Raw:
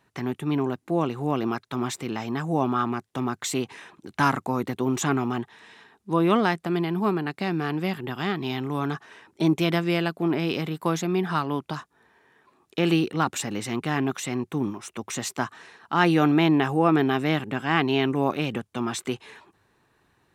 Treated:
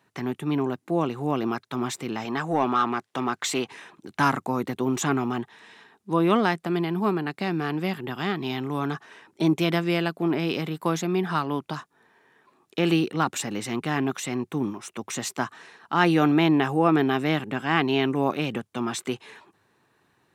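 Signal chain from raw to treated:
high-pass filter 110 Hz
0:02.25–0:03.69: mid-hump overdrive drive 11 dB, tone 4,100 Hz, clips at −11.5 dBFS

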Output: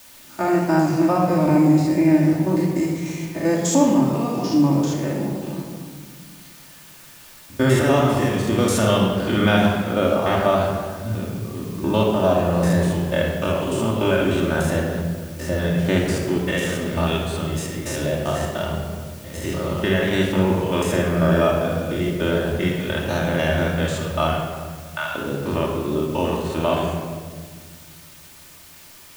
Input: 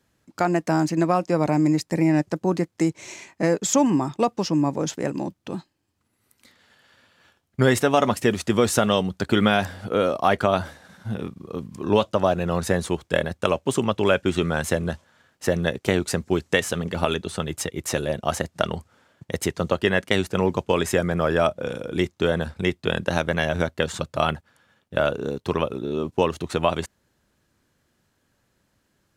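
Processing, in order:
spectrum averaged block by block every 100 ms
0:24.33–0:25.15: Butterworth high-pass 790 Hz 48 dB per octave
bit-depth reduction 8 bits, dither triangular
rectangular room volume 2,400 cubic metres, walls mixed, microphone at 2.6 metres

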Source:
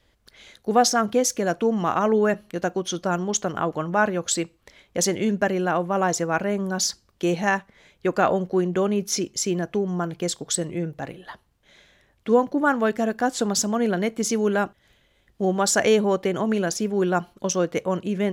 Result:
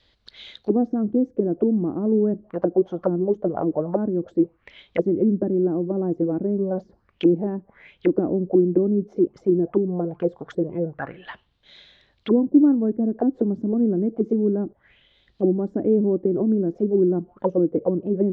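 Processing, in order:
envelope-controlled low-pass 310–4,200 Hz down, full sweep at −20 dBFS
level −1.5 dB

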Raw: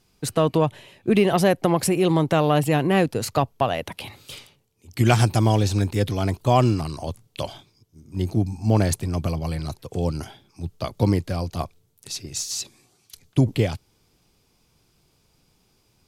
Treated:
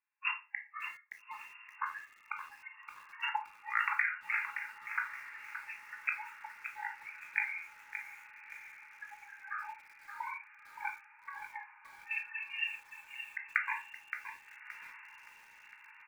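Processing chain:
compressor whose output falls as the input rises −27 dBFS, ratio −0.5
pitch shifter −6.5 semitones
noise reduction from a noise print of the clip's start 27 dB
linear-phase brick-wall band-pass 820–2,800 Hz
feedback delay with all-pass diffusion 1,249 ms, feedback 64%, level −15 dB
convolution reverb RT60 0.35 s, pre-delay 15 ms, DRR 3.5 dB
feedback echo at a low word length 571 ms, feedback 35%, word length 9 bits, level −9 dB

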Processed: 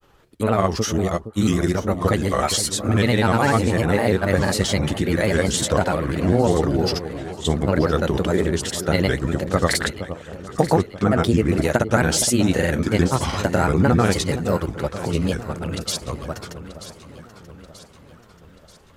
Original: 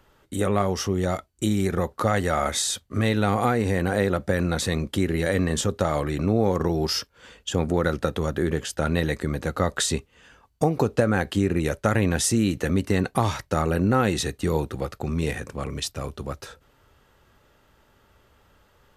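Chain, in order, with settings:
granular cloud, pitch spread up and down by 3 semitones
delay that swaps between a low-pass and a high-pass 467 ms, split 1,000 Hz, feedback 70%, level −11 dB
level +5 dB

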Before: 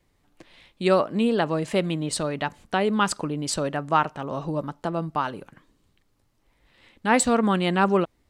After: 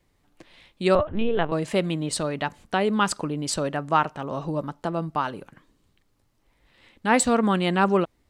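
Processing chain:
0:00.95–0:01.52: linear-prediction vocoder at 8 kHz pitch kept

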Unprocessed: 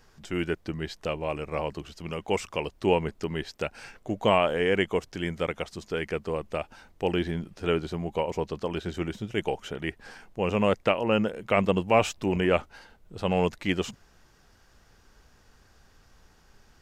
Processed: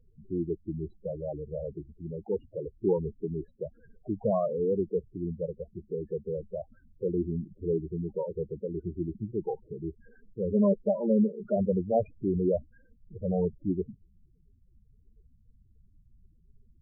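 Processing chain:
running median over 41 samples
0:10.52–0:11.56: comb filter 5 ms, depth 69%
spectral peaks only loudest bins 8

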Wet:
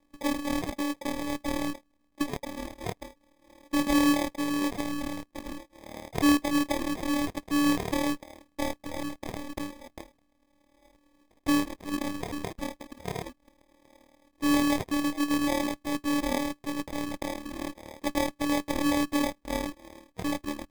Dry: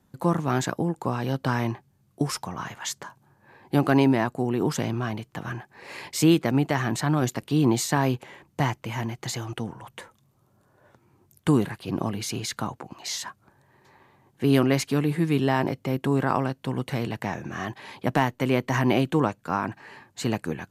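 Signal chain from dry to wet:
one-sided soft clipper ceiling −12.5 dBFS
phases set to zero 293 Hz
decimation without filtering 31×

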